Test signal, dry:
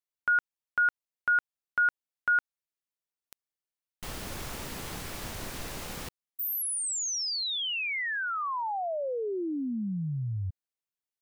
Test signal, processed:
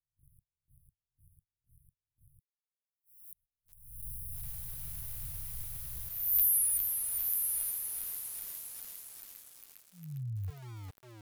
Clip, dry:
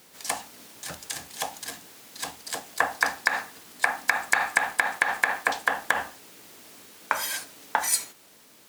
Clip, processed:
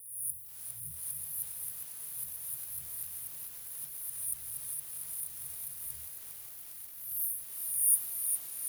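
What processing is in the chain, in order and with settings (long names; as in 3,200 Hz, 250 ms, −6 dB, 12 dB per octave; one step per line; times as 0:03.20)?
peak hold with a rise ahead of every peak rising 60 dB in 0.89 s
linear-phase brick-wall band-stop 150–9,300 Hz
high-shelf EQ 11,000 Hz +7.5 dB
on a send: echo through a band-pass that steps 313 ms, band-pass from 1,600 Hz, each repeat 1.4 octaves, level −1 dB
on the sum: noise gate −60 dBFS, range −25 dB
soft clipping −3.5 dBFS
feedback echo at a low word length 405 ms, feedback 80%, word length 7 bits, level −6 dB
level −4.5 dB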